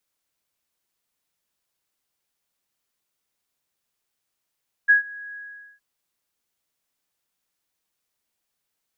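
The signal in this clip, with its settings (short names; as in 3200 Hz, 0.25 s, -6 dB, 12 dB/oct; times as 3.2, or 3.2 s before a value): ADSR sine 1660 Hz, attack 22 ms, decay 0.121 s, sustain -24 dB, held 0.47 s, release 0.446 s -10 dBFS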